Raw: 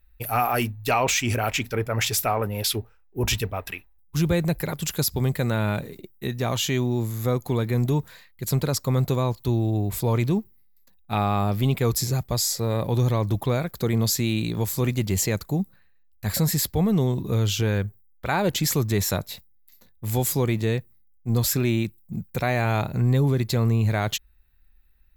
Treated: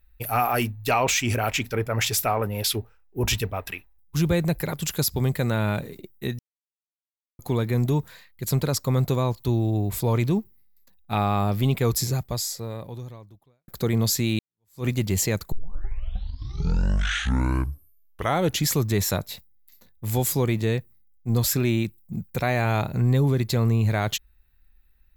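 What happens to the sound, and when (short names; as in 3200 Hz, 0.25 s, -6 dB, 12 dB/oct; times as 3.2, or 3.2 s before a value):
6.39–7.39 mute
12.06–13.68 fade out quadratic
14.39–14.86 fade in exponential
15.52 tape start 3.20 s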